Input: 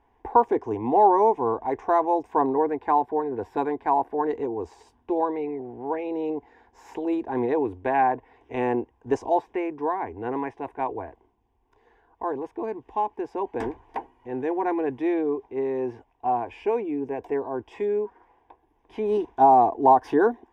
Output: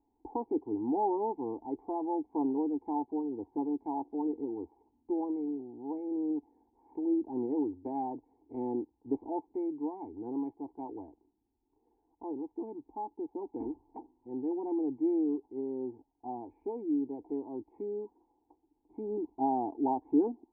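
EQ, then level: dynamic bell 1.4 kHz, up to -7 dB, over -41 dBFS, Q 2.4; cascade formant filter u; 0.0 dB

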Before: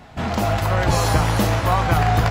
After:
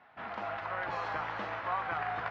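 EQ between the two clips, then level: band-pass filter 1.5 kHz, Q 1.1; distance through air 210 m; -8.5 dB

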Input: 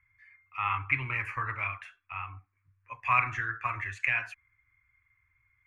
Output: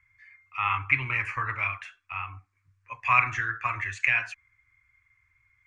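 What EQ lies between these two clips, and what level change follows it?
low-pass 8 kHz 24 dB/octave; treble shelf 3.5 kHz +9 dB; +2.0 dB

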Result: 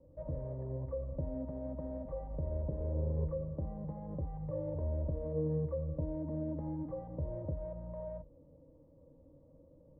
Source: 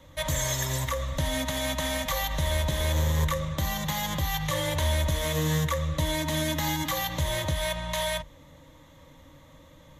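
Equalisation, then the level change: four-pole ladder low-pass 550 Hz, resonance 50%; 0.0 dB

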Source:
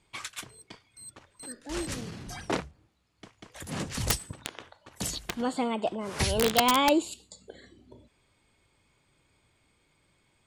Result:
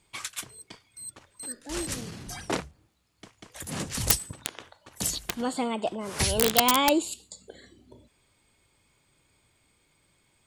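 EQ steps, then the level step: treble shelf 6.7 kHz +9.5 dB; 0.0 dB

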